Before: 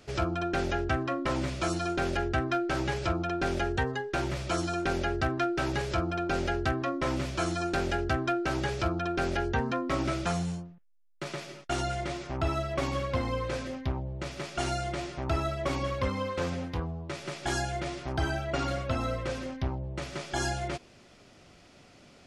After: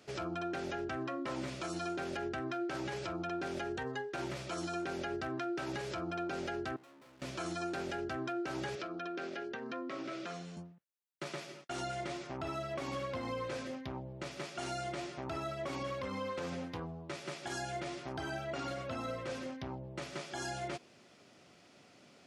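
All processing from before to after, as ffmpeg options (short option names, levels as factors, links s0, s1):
-filter_complex "[0:a]asettb=1/sr,asplit=3[s0][s1][s2];[s0]atrim=end=6.764[s3];[s1]atrim=start=6.76:end=7.22,asetpts=PTS-STARTPTS,afade=t=in:d=0.004:c=qsin,afade=t=out:st=0.456:d=0.004:c=qsin,lowpass=3900,aeval=exprs='(tanh(100*val(0)+0.65)-tanh(0.65))/100':c=same,aeval=exprs='max(val(0),0)':c=same[s4];[s2]atrim=start=7.216[s5];[s3][s4]acrossfade=d=0.004:c1=hsin:c2=qsin[s6];[s6][s5]acrossfade=d=0.004:c1=qsin:c2=hsin,asettb=1/sr,asplit=3[s7][s8][s9];[s7]atrim=end=8.754[s10];[s8]atrim=start=8.75:end=10.57,asetpts=PTS-STARTPTS,afade=t=in:d=0.004:c=qsin,afade=t=out:st=1.816:d=0.004:c=qsin,equalizer=f=870:t=o:w=0.31:g=-10,acompressor=threshold=0.0316:ratio=6:attack=3.2:release=140:knee=1:detection=peak,highpass=240,lowpass=5200[s11];[s9]atrim=start=10.566[s12];[s10][s11]acrossfade=d=0.004:c1=hsin:c2=qsin[s13];[s13][s12]acrossfade=d=0.004:c1=qsin:c2=hsin,highpass=150,alimiter=level_in=1.19:limit=0.0631:level=0:latency=1:release=59,volume=0.841,volume=0.596"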